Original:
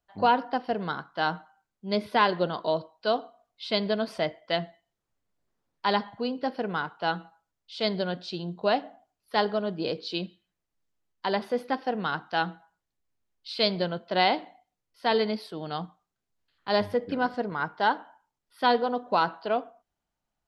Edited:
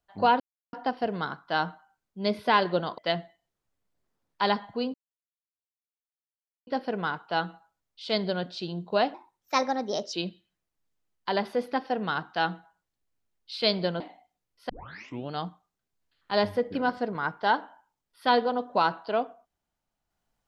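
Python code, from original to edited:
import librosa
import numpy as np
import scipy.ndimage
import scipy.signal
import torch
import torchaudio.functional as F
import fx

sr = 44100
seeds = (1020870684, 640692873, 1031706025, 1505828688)

y = fx.edit(x, sr, fx.insert_silence(at_s=0.4, length_s=0.33),
    fx.cut(start_s=2.65, length_s=1.77),
    fx.insert_silence(at_s=6.38, length_s=1.73),
    fx.speed_span(start_s=8.85, length_s=1.25, speed=1.26),
    fx.cut(start_s=13.97, length_s=0.4),
    fx.tape_start(start_s=15.06, length_s=0.63), tone=tone)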